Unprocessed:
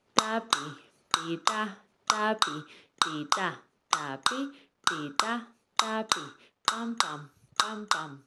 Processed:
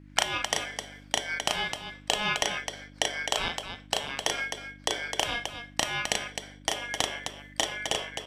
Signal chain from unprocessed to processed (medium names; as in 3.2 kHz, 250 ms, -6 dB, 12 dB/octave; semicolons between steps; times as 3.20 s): bass shelf 79 Hz +11 dB; ring modulator 1.9 kHz; loudspeakers at several distances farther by 12 m -3 dB, 89 m -7 dB; mains buzz 50 Hz, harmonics 6, -51 dBFS -2 dB/octave